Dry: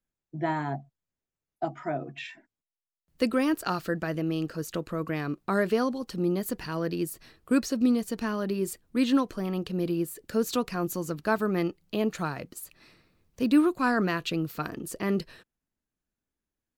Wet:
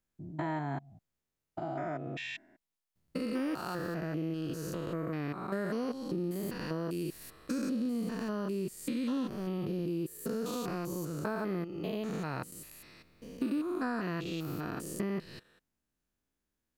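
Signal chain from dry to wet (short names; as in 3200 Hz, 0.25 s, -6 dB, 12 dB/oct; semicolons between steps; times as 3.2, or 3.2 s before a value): stepped spectrum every 0.2 s; compressor 3:1, threshold -38 dBFS, peak gain reduction 12 dB; gain +4 dB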